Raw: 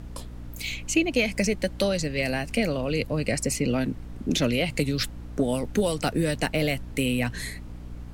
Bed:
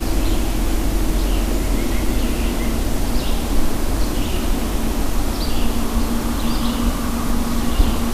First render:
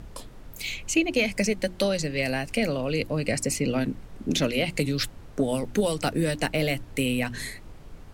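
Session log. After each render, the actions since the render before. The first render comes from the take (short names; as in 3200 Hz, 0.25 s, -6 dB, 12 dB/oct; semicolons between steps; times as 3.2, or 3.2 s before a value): notches 60/120/180/240/300/360 Hz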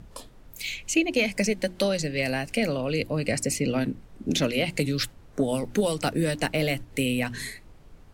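noise print and reduce 6 dB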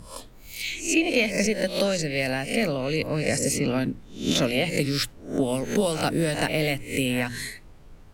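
spectral swells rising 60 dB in 0.42 s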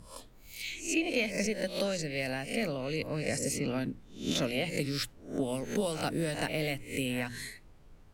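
gain -8 dB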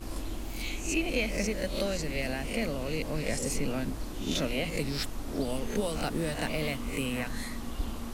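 add bed -18 dB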